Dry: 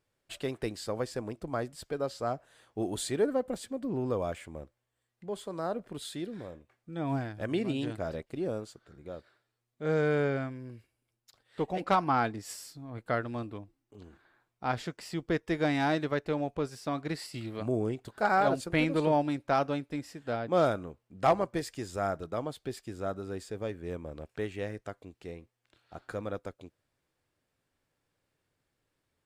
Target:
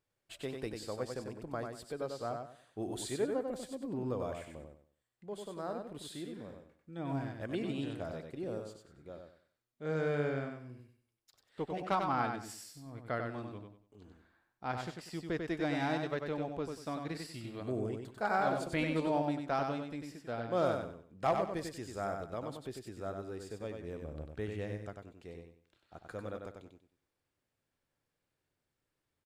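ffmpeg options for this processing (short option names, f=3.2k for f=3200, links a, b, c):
-filter_complex "[0:a]asettb=1/sr,asplit=3[a][b][c];[a]atrim=end=24.024[d];[b]atrim=start=24.02:end=24.96,asetpts=PTS-STARTPTS,afade=t=in:d=0.004:c=qsin,afade=t=out:st=0.936:d=0.004:c=qsin,equalizer=f=64:w=0.36:g=6.5[e];[c]atrim=start=24.956[f];[d][e]acrossfade=d=0.004:c1=hsin:c2=qsin[g];[g][f]acrossfade=d=0.004:c1=qsin:c2=hsin,asplit=2[h][i];[i]aecho=0:1:95|190|285|380:0.562|0.157|0.0441|0.0123[j];[h][j]amix=inputs=2:normalize=0,volume=-6.5dB"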